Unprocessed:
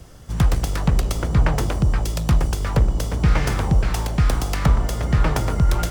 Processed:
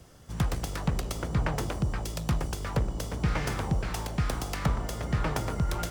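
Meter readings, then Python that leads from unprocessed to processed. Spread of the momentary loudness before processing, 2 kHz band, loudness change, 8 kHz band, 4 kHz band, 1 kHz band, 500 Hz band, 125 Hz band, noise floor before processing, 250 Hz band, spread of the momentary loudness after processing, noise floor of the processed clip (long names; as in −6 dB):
2 LU, −7.0 dB, −10.0 dB, −7.0 dB, −7.0 dB, −7.0 dB, −7.0 dB, −10.0 dB, −31 dBFS, −8.0 dB, 3 LU, −42 dBFS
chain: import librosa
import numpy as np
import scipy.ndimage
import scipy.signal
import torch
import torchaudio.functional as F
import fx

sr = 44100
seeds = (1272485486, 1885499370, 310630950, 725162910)

y = fx.low_shelf(x, sr, hz=64.0, db=-10.0)
y = y * 10.0 ** (-7.0 / 20.0)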